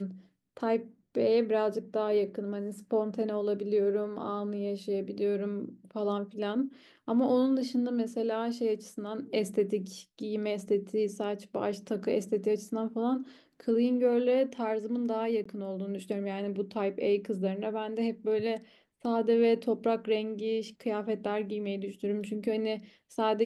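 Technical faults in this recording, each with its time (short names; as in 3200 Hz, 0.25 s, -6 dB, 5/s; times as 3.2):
15.44–15.46 gap 15 ms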